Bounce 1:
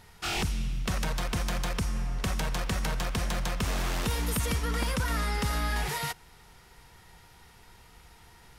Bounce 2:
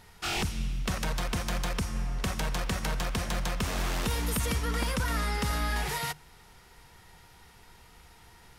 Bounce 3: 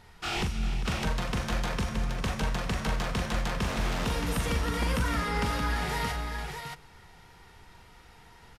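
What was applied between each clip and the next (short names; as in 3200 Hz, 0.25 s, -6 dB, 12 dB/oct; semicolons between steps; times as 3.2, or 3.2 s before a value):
notches 50/100/150 Hz
high shelf 6700 Hz -10.5 dB; on a send: tapped delay 41/310/400/623 ms -6.5/-14.5/-11.5/-5.5 dB; on the sum: downsampling 32000 Hz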